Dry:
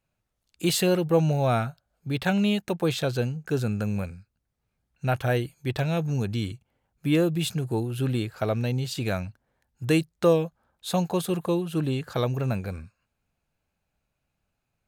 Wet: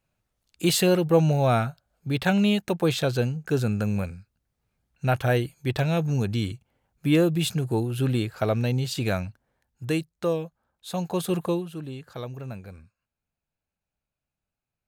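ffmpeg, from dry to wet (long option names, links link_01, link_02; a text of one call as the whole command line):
ffmpeg -i in.wav -af "volume=9.5dB,afade=type=out:start_time=9.1:duration=0.99:silence=0.421697,afade=type=in:start_time=10.93:duration=0.46:silence=0.421697,afade=type=out:start_time=11.39:duration=0.38:silence=0.266073" out.wav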